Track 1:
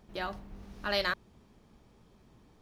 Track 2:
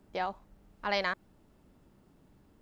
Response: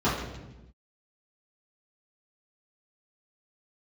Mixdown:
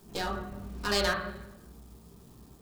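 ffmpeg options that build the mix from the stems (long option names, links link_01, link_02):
-filter_complex "[0:a]volume=-4dB,asplit=2[link_01][link_02];[link_02]volume=-11dB[link_03];[1:a]aeval=exprs='if(lt(val(0),0),0.251*val(0),val(0))':channel_layout=same,acompressor=threshold=-37dB:ratio=3,aexciter=amount=6.5:drive=5.8:freq=3300,volume=0.5dB[link_04];[2:a]atrim=start_sample=2205[link_05];[link_03][link_05]afir=irnorm=-1:irlink=0[link_06];[link_01][link_04][link_06]amix=inputs=3:normalize=0"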